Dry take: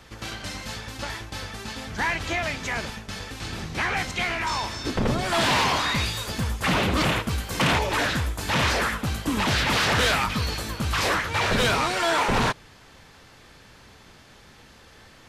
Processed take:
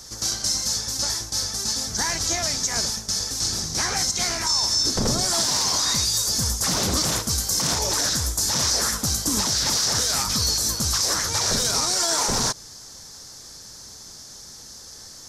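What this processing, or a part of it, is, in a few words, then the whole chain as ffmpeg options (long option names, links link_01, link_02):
over-bright horn tweeter: -af "highshelf=frequency=3900:width_type=q:width=3:gain=13.5,alimiter=limit=-12.5dB:level=0:latency=1:release=81"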